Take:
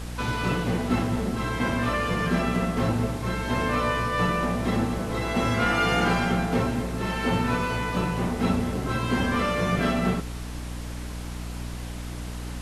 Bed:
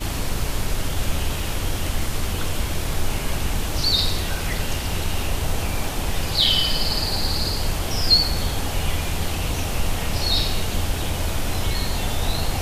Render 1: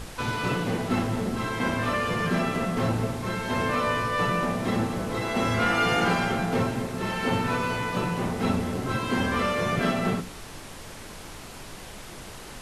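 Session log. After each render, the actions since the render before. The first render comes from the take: hum notches 60/120/180/240/300 Hz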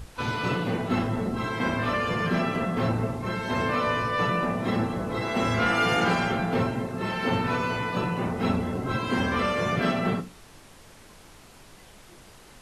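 noise print and reduce 9 dB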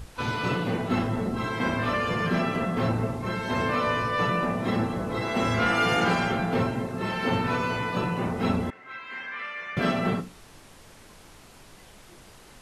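8.70–9.77 s: band-pass filter 2 kHz, Q 3.1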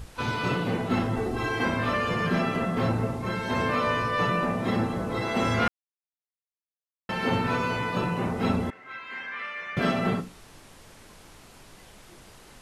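1.16–1.65 s: comb 2.6 ms, depth 73%; 5.68–7.09 s: mute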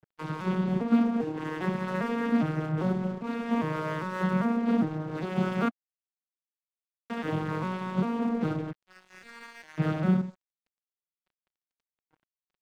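vocoder on a broken chord minor triad, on D#3, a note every 401 ms; crossover distortion -45.5 dBFS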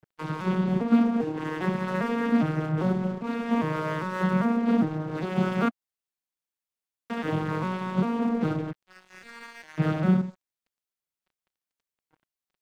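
trim +2.5 dB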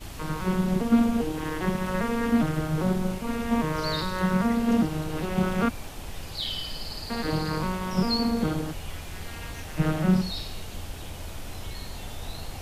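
add bed -13.5 dB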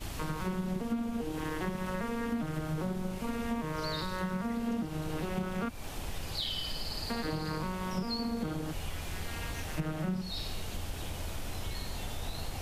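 compression 6:1, threshold -31 dBFS, peak gain reduction 15.5 dB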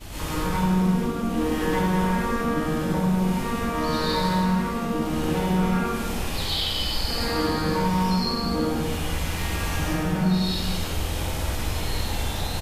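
early reflections 49 ms -6.5 dB, 66 ms -7.5 dB; plate-style reverb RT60 1.5 s, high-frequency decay 0.75×, pre-delay 95 ms, DRR -10 dB

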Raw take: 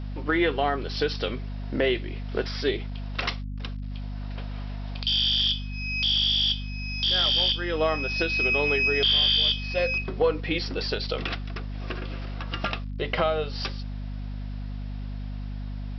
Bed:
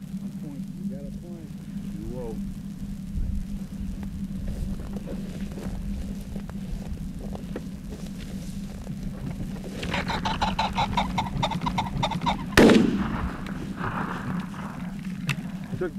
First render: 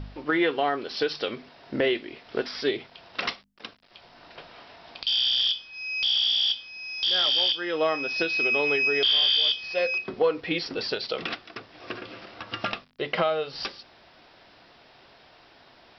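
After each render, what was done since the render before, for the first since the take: de-hum 50 Hz, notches 5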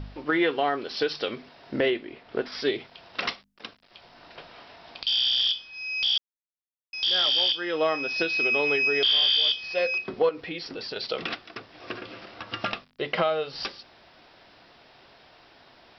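1.90–2.52 s: low-pass 2.1 kHz 6 dB/octave; 6.18–6.93 s: mute; 10.29–10.96 s: compression 2:1, threshold -36 dBFS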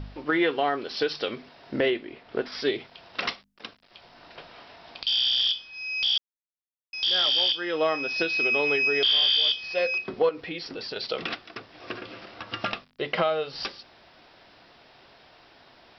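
no audible change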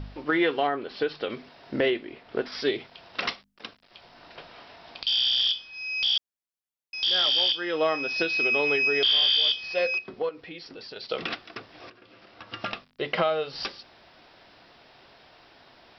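0.67–1.30 s: distance through air 270 m; 9.99–11.11 s: gain -6.5 dB; 11.90–13.03 s: fade in, from -21.5 dB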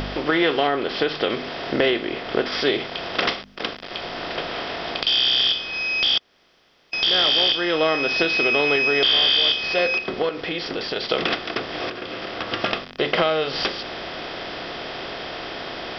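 spectral levelling over time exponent 0.6; in parallel at 0 dB: compression, threshold -31 dBFS, peak gain reduction 13.5 dB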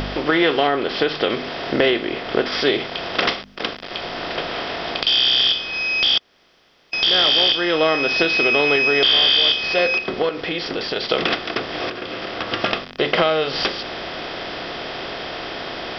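trim +2.5 dB

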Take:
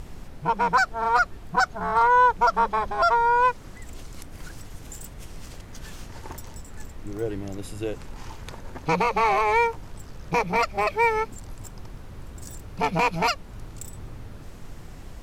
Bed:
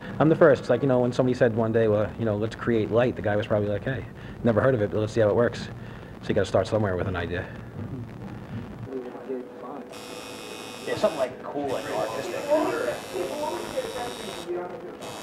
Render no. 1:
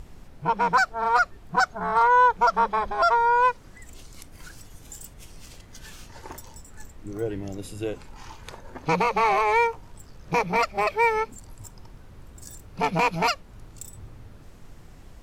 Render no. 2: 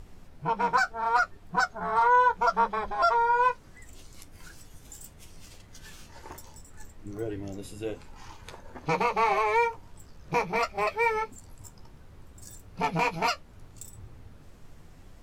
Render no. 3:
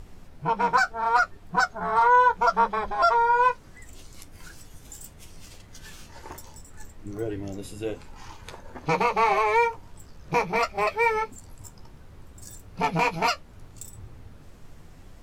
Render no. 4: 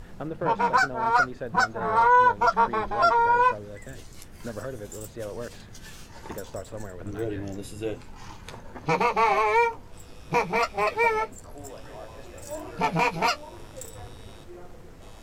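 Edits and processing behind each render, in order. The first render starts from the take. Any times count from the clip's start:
noise print and reduce 6 dB
flange 0.72 Hz, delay 9.6 ms, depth 5.1 ms, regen -36%
trim +3 dB
add bed -14.5 dB

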